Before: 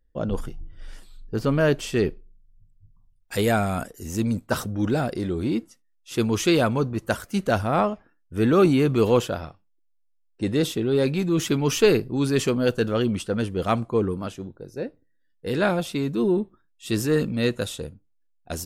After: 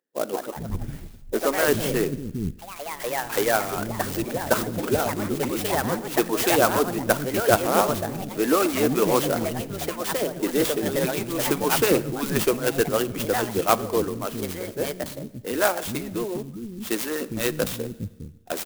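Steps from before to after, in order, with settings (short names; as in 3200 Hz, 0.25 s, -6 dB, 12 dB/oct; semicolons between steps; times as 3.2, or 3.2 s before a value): harmonic-percussive split harmonic -14 dB; bands offset in time highs, lows 0.41 s, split 250 Hz; echoes that change speed 0.205 s, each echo +3 st, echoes 3, each echo -6 dB; Schroeder reverb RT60 1.2 s, combs from 27 ms, DRR 17.5 dB; clock jitter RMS 0.06 ms; gain +5 dB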